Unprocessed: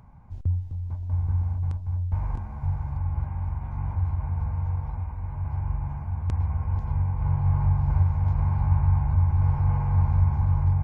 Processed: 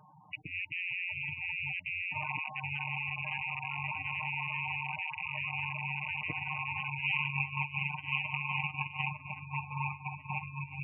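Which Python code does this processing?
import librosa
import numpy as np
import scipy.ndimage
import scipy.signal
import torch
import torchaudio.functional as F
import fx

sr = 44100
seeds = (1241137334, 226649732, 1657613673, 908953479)

y = fx.rattle_buzz(x, sr, strikes_db=-31.0, level_db=-24.0)
y = fx.high_shelf(y, sr, hz=fx.line((6.98, 2000.0), (9.07, 2100.0)), db=9.5, at=(6.98, 9.07), fade=0.02)
y = fx.over_compress(y, sr, threshold_db=-24.0, ratio=-0.5)
y = scipy.signal.sosfilt(scipy.signal.butter(2, 210.0, 'highpass', fs=sr, output='sos'), y)
y = fx.low_shelf(y, sr, hz=350.0, db=-8.0)
y = y + 0.97 * np.pad(y, (int(6.6 * sr / 1000.0), 0))[:len(y)]
y = fx.spec_gate(y, sr, threshold_db=-10, keep='strong')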